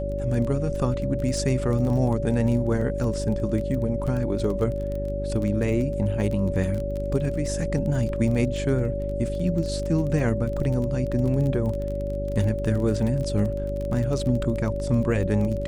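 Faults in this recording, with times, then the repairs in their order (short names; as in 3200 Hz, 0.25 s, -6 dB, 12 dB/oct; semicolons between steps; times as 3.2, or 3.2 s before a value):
crackle 21/s -29 dBFS
hum 50 Hz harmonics 8 -30 dBFS
tone 570 Hz -29 dBFS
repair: de-click; de-hum 50 Hz, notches 8; notch 570 Hz, Q 30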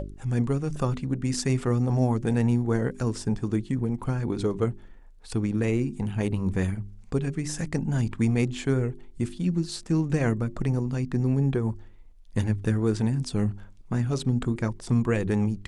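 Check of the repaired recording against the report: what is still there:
none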